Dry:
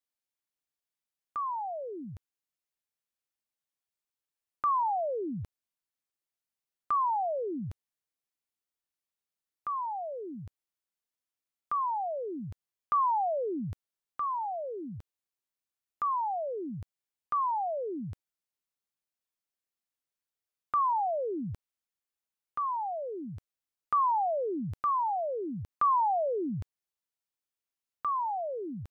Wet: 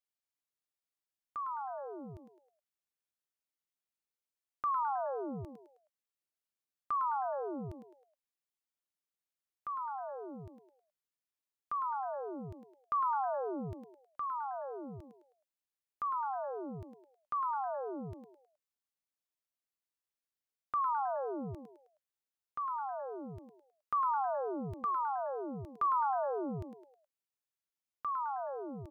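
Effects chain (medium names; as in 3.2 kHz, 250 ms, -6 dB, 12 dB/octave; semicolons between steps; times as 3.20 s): frequency-shifting echo 105 ms, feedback 38%, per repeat +130 Hz, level -8.5 dB; trim -5.5 dB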